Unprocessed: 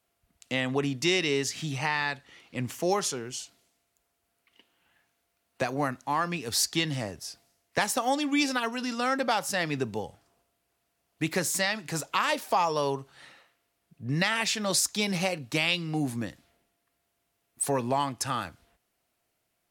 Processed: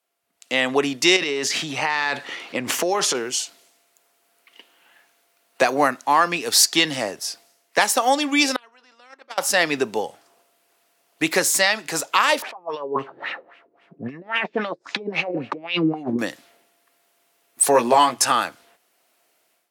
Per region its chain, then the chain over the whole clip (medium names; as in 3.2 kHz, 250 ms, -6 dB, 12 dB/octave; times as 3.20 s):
1.16–3.15 s: treble shelf 5.3 kHz -8.5 dB + transient shaper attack +5 dB, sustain +10 dB + compression 5:1, threshold -29 dBFS
8.56–9.38 s: gate -22 dBFS, range -39 dB + band-pass filter 850 Hz, Q 0.53 + spectrum-flattening compressor 2:1
12.42–16.19 s: compressor with a negative ratio -34 dBFS, ratio -0.5 + LFO low-pass sine 3.7 Hz 310–2900 Hz
17.73–18.32 s: hum notches 60/120/180 Hz + doubling 17 ms -4 dB
whole clip: high-pass 350 Hz 12 dB/octave; level rider gain up to 14 dB; trim -1 dB